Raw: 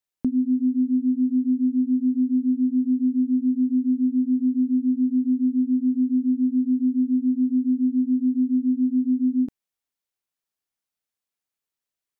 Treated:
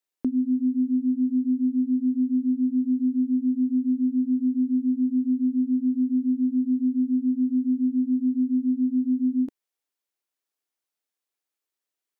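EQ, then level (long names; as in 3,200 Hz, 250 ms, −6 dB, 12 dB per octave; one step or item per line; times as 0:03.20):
low shelf with overshoot 230 Hz −9 dB, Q 1.5
0.0 dB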